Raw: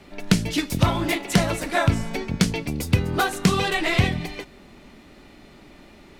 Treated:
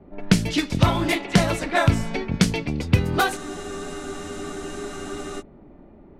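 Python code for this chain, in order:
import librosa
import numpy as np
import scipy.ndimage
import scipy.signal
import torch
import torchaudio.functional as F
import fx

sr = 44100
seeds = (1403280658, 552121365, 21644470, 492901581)

y = fx.env_lowpass(x, sr, base_hz=620.0, full_db=-18.5)
y = fx.spec_freeze(y, sr, seeds[0], at_s=3.4, hold_s=2.0)
y = y * librosa.db_to_amplitude(1.5)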